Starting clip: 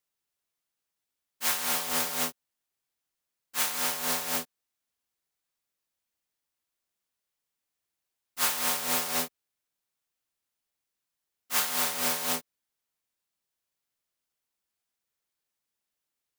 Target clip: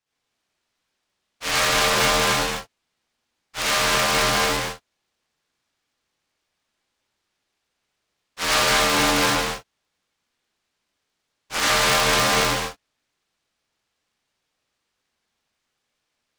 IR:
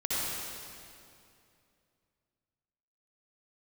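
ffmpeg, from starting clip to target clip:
-filter_complex "[0:a]asettb=1/sr,asplit=3[s0][s1][s2];[s0]atrim=end=8.734[s3];[s1]atrim=start=8.73:end=9.16,asetpts=PTS-STARTPTS,afade=t=in:d=0.004:c=qsin,afade=t=out:st=0.426:d=0.004:c=qsin,aeval=exprs='if(lt(val(0),0),0.708*val(0),val(0))':c=same[s4];[s2]atrim=start=9.156[s5];[s3][s4]acrossfade=d=0.004:c1=hsin:c2=qsin[s6];[s6][s5]acrossfade=d=0.004:c1=qsin:c2=hsin,lowpass=5300[s7];[1:a]atrim=start_sample=2205,afade=t=out:st=0.4:d=0.01,atrim=end_sample=18081[s8];[s7][s8]afir=irnorm=-1:irlink=0,aeval=exprs='val(0)*sgn(sin(2*PI*290*n/s))':c=same,volume=2"

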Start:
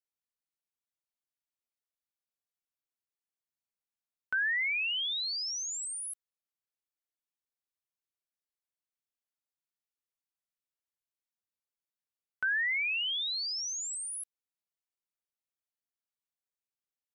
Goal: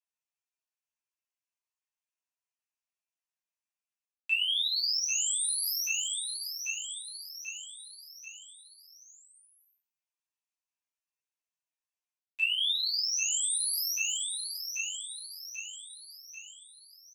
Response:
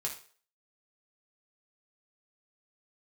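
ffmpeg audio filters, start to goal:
-filter_complex "[0:a]highpass=f=360:w=0.5412,highpass=f=360:w=1.3066,equalizer=f=380:t=q:w=4:g=6,equalizer=f=570:t=q:w=4:g=8,equalizer=f=990:t=q:w=4:g=4,equalizer=f=1500:t=q:w=4:g=10,equalizer=f=2300:t=q:w=4:g=-4,equalizer=f=3500:t=q:w=4:g=4,lowpass=f=5400:w=0.5412,lowpass=f=5400:w=1.3066,agate=range=0.224:threshold=0.00251:ratio=16:detection=peak,highshelf=f=2600:g=7,asplit=2[s0][s1];[s1]asoftclip=type=hard:threshold=0.0282,volume=0.316[s2];[s0][s2]amix=inputs=2:normalize=0,aecho=1:1:788|1576|2364|3152|3940:0.224|0.112|0.056|0.028|0.014,asetrate=76340,aresample=44100,atempo=0.577676,areverse,acompressor=threshold=0.0178:ratio=10,areverse[s3];[1:a]atrim=start_sample=2205,atrim=end_sample=3969,asetrate=42777,aresample=44100[s4];[s3][s4]afir=irnorm=-1:irlink=0,volume=1.78"

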